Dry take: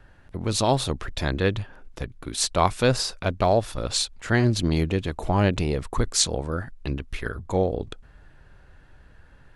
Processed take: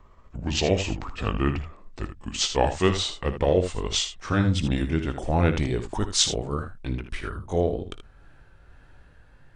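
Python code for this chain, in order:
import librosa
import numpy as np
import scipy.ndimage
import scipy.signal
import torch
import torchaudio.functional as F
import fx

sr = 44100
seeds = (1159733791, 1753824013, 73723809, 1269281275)

y = fx.pitch_glide(x, sr, semitones=-6.5, runs='ending unshifted')
y = fx.room_early_taps(y, sr, ms=(19, 56, 78), db=(-17.5, -15.0, -10.5))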